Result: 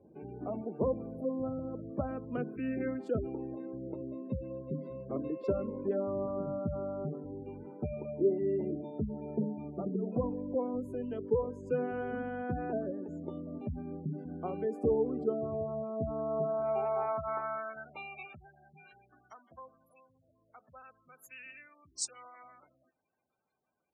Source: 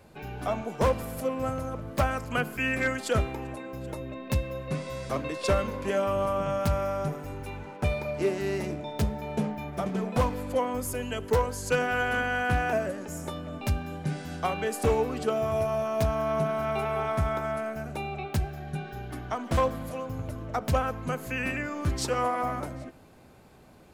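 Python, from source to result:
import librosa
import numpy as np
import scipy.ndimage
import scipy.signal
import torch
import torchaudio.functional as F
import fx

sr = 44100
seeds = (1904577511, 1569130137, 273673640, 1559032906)

y = fx.bass_treble(x, sr, bass_db=5, treble_db=3)
y = fx.spec_gate(y, sr, threshold_db=-20, keep='strong')
y = fx.filter_sweep_bandpass(y, sr, from_hz=340.0, to_hz=7700.0, start_s=15.98, end_s=19.84, q=1.9)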